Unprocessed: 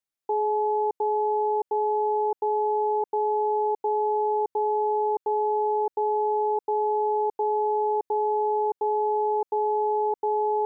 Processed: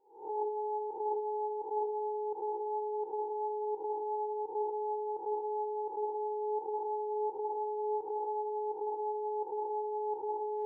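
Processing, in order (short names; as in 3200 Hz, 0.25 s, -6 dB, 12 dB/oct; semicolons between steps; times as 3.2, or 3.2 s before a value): spectral swells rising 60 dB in 0.48 s; flange 0.24 Hz, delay 8 ms, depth 7.1 ms, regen +69%; on a send: reverb, pre-delay 0.147 s, DRR 3 dB; on the sum: gain -7 dB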